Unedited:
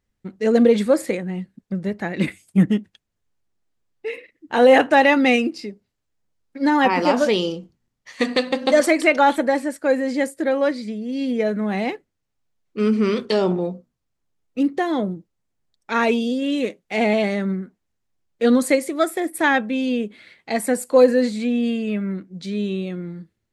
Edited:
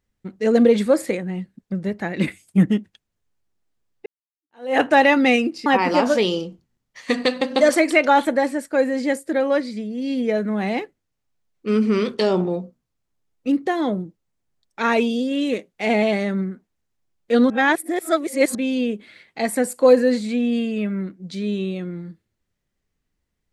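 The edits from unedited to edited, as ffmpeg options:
-filter_complex "[0:a]asplit=5[a][b][c][d][e];[a]atrim=end=4.06,asetpts=PTS-STARTPTS,afade=t=out:st=4.056:d=0.004:c=hsin[f];[b]atrim=start=4.06:end=5.662,asetpts=PTS-STARTPTS,afade=t=in:d=0.74:c=exp[g];[c]atrim=start=6.768:end=18.612[h];[d]atrim=start=18.608:end=19.662,asetpts=PTS-STARTPTS,areverse[i];[e]atrim=start=19.658[j];[f][g]concat=n=2:v=0:a=1[k];[k][h]acrossfade=d=0.004:c1=hsin:c2=hsin[l];[l][i]acrossfade=d=0.004:c1=hsin:c2=hsin[m];[m][j]acrossfade=d=0.004:c1=hsin:c2=hsin"

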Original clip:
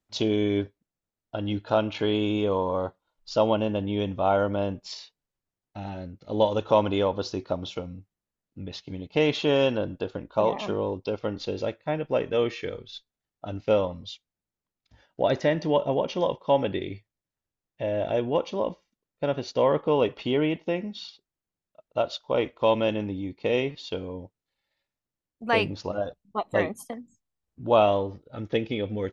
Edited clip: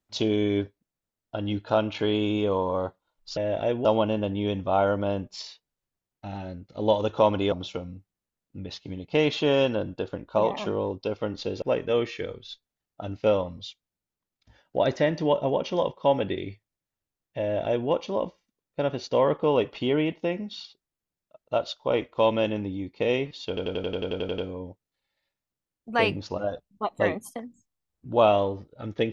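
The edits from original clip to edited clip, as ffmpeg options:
-filter_complex "[0:a]asplit=15[a][b][c][d][e][f][g][h][i][j][k][l][m][n][o];[a]atrim=end=3.372[p];[b]atrim=start=17.848:end=18.332[q];[c]atrim=start=3.368:end=7.042[r];[d]atrim=start=7.538:end=11.642[s];[e]atrim=start=12.058:end=24.012[t];[f]atrim=start=23.918:end=24.012[u];[g]atrim=start=23.918:end=24.012[v];[h]atrim=start=23.918:end=24.012[w];[i]atrim=start=23.918:end=24.012[x];[j]atrim=start=23.918:end=24.012[y];[k]atrim=start=23.918:end=24.012[z];[l]atrim=start=23.918:end=24.012[aa];[m]atrim=start=23.918:end=24.012[ab];[n]atrim=start=23.918:end=24.012[ac];[o]atrim=start=23.918[ad];[p][q]acrossfade=d=0.004:c1=hsin:c2=hsin[ae];[ae][r]acrossfade=d=0.004:c1=hsin:c2=hsin[af];[af][s]acrossfade=d=0.004:c1=hsin:c2=hsin[ag];[ag][t]acrossfade=d=0.004:c1=hsin:c2=hsin[ah];[ah][u]acrossfade=d=0.004:c1=hsin:c2=hsin[ai];[ai][v]acrossfade=d=0.004:c1=hsin:c2=hsin[aj];[aj][w]acrossfade=d=0.004:c1=hsin:c2=hsin[ak];[ak][x]acrossfade=d=0.004:c1=hsin:c2=hsin[al];[al][y]acrossfade=d=0.004:c1=hsin:c2=hsin[am];[am][z]acrossfade=d=0.004:c1=hsin:c2=hsin[an];[an][aa]acrossfade=d=0.004:c1=hsin:c2=hsin[ao];[ao][ab]acrossfade=d=0.004:c1=hsin:c2=hsin[ap];[ap][ac]acrossfade=d=0.004:c1=hsin:c2=hsin[aq];[aq][ad]acrossfade=d=0.004:c1=hsin:c2=hsin"

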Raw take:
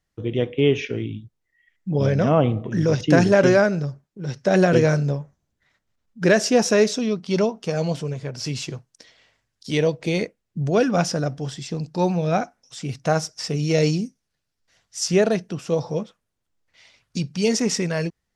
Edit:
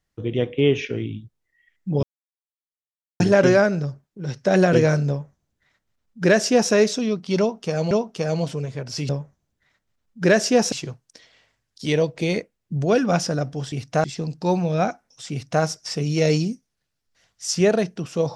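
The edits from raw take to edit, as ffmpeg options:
-filter_complex "[0:a]asplit=8[a][b][c][d][e][f][g][h];[a]atrim=end=2.03,asetpts=PTS-STARTPTS,afade=t=out:st=2.026:d=0.004:c=hsin[i];[b]atrim=start=2.03:end=3.2,asetpts=PTS-STARTPTS,volume=0[j];[c]atrim=start=3.2:end=7.912,asetpts=PTS-STARTPTS,afade=t=in:d=0.004:c=hsin[k];[d]atrim=start=7.388:end=8.572[l];[e]atrim=start=5.088:end=6.722[m];[f]atrim=start=8.568:end=11.572[n];[g]atrim=start=12.838:end=13.162[o];[h]atrim=start=11.568[p];[i][j][k]concat=n=3:v=0:a=1[q];[q][l]acrossfade=d=0.004:c1=hsin:c2=hsin[r];[r][m]acrossfade=d=0.004:c1=hsin:c2=hsin[s];[s][n]acrossfade=d=0.004:c1=hsin:c2=hsin[t];[t][o]acrossfade=d=0.004:c1=hsin:c2=hsin[u];[u][p]acrossfade=d=0.004:c1=hsin:c2=hsin"

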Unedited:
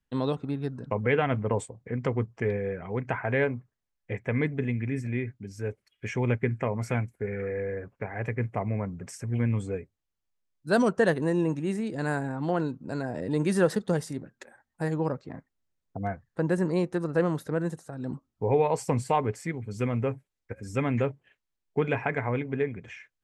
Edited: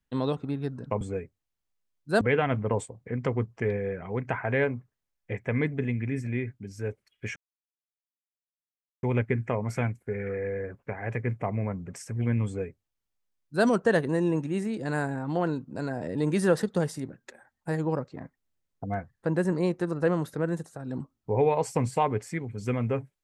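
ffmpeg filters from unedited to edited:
-filter_complex "[0:a]asplit=4[a][b][c][d];[a]atrim=end=1.012[e];[b]atrim=start=9.588:end=10.792[f];[c]atrim=start=1.008:end=6.16,asetpts=PTS-STARTPTS,afade=t=out:st=5.148:d=0.004:c=hsin,apad=pad_dur=1.67[g];[d]atrim=start=6.16,asetpts=PTS-STARTPTS,afade=t=in:d=0.004:c=hsin[h];[e][f]acrossfade=d=0.004:c1=hsin:c2=hsin[i];[g][h]concat=n=2:v=0:a=1[j];[i][j]acrossfade=d=0.004:c1=hsin:c2=hsin"

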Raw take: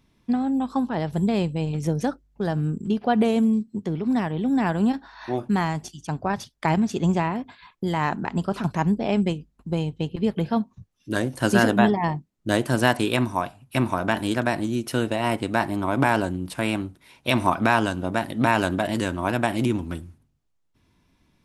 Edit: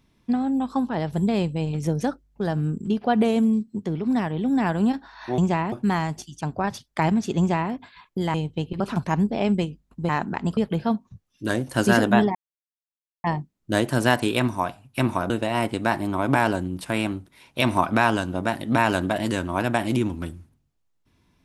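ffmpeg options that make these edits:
-filter_complex "[0:a]asplit=9[a][b][c][d][e][f][g][h][i];[a]atrim=end=5.382[j];[b]atrim=start=7.038:end=7.382[k];[c]atrim=start=5.378:end=8.002[l];[d]atrim=start=9.768:end=10.232[m];[e]atrim=start=8.478:end=9.772[n];[f]atrim=start=7.998:end=8.482[o];[g]atrim=start=10.228:end=12.01,asetpts=PTS-STARTPTS,afade=t=out:st=1.778:d=0.004:c=hsin,apad=pad_dur=0.89[p];[h]atrim=start=12.01:end=14.072,asetpts=PTS-STARTPTS,afade=t=in:d=0.004:c=hsin[q];[i]atrim=start=14.988[r];[j][k]acrossfade=d=0.004:c1=hsin:c2=hsin[s];[s][l]acrossfade=d=0.004:c1=hsin:c2=hsin[t];[t][m]acrossfade=d=0.004:c1=hsin:c2=hsin[u];[u][n]acrossfade=d=0.004:c1=hsin:c2=hsin[v];[v][o]acrossfade=d=0.004:c1=hsin:c2=hsin[w];[p][q]concat=n=2:v=0:a=1[x];[w][x]acrossfade=d=0.004:c1=hsin:c2=hsin[y];[y][r]acrossfade=d=0.004:c1=hsin:c2=hsin"

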